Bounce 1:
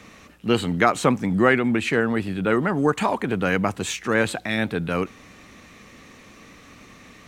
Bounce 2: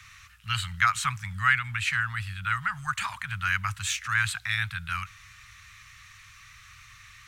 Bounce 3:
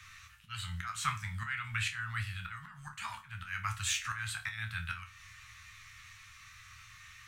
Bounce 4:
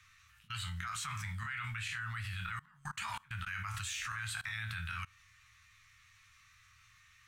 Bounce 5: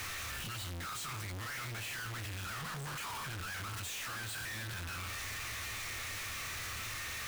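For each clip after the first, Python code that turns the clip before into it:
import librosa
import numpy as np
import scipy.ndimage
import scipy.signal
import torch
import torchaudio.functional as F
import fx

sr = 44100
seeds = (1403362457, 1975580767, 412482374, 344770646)

y1 = scipy.signal.sosfilt(scipy.signal.cheby1(3, 1.0, [110.0, 1300.0], 'bandstop', fs=sr, output='sos'), x)
y2 = fx.auto_swell(y1, sr, attack_ms=295.0)
y2 = fx.resonator_bank(y2, sr, root=38, chord='minor', decay_s=0.28)
y2 = y2 * 10.0 ** (7.5 / 20.0)
y3 = fx.level_steps(y2, sr, step_db=24)
y3 = y3 * 10.0 ** (8.0 / 20.0)
y4 = np.sign(y3) * np.sqrt(np.mean(np.square(y3)))
y4 = y4 * 10.0 ** (1.5 / 20.0)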